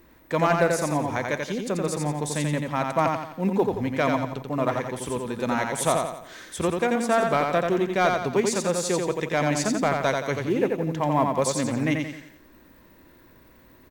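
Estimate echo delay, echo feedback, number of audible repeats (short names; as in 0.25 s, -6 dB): 87 ms, 43%, 5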